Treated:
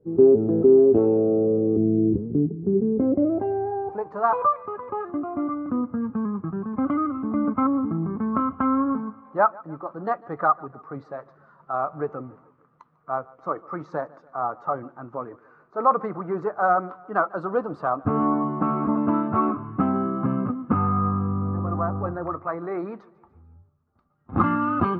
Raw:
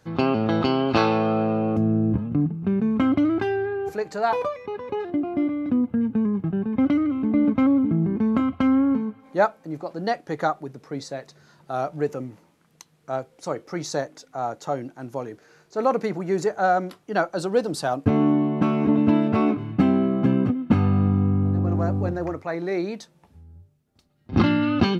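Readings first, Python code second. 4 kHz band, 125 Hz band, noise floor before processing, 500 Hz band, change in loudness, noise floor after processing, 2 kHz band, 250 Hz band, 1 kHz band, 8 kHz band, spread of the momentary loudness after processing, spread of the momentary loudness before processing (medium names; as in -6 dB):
under -20 dB, -4.5 dB, -61 dBFS, +2.0 dB, -0.5 dB, -60 dBFS, -3.5 dB, -3.0 dB, +3.0 dB, under -30 dB, 12 LU, 12 LU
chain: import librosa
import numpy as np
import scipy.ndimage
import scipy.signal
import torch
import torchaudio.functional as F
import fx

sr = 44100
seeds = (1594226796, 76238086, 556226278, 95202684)

y = fx.spec_quant(x, sr, step_db=15)
y = fx.echo_feedback(y, sr, ms=147, feedback_pct=53, wet_db=-23)
y = fx.filter_sweep_lowpass(y, sr, from_hz=400.0, to_hz=1200.0, start_s=2.84, end_s=4.28, q=6.7)
y = F.gain(torch.from_numpy(y), -4.5).numpy()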